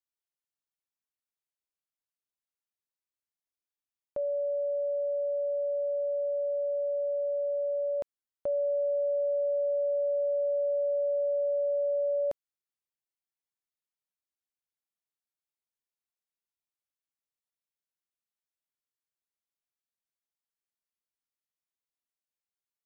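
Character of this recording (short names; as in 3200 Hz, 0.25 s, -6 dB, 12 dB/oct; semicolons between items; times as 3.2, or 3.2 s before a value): noise floor -95 dBFS; spectral tilt -6.0 dB/oct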